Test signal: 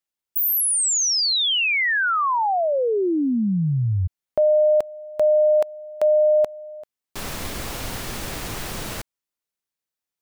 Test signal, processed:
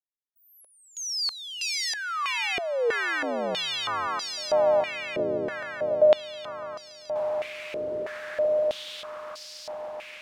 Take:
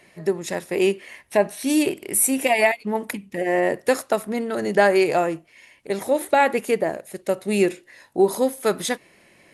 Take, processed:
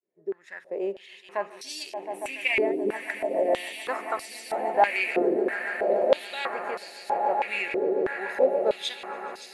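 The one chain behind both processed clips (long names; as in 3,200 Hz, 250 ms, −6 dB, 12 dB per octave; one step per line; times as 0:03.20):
fade in at the beginning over 1.08 s
echo that builds up and dies away 143 ms, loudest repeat 8, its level −12 dB
band-pass on a step sequencer 3.1 Hz 400–4,900 Hz
level +2.5 dB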